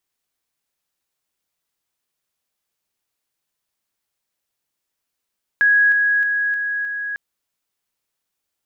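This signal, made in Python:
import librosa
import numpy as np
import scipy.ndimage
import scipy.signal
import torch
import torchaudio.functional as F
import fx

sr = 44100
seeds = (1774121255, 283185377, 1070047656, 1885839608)

y = fx.level_ladder(sr, hz=1660.0, from_db=-11.0, step_db=-3.0, steps=5, dwell_s=0.31, gap_s=0.0)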